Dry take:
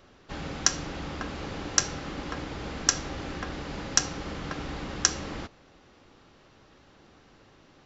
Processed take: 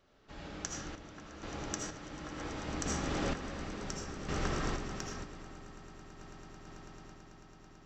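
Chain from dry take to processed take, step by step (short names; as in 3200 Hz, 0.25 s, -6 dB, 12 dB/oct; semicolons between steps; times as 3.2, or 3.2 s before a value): Doppler pass-by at 3.45, 8 m/s, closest 1.8 m; compressor, threshold -46 dBFS, peak gain reduction 21.5 dB; swelling echo 0.11 s, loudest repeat 8, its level -16 dB; reverb RT60 1.9 s, pre-delay 40 ms, DRR -3 dB; random-step tremolo 2.1 Hz, depth 75%; gain +10.5 dB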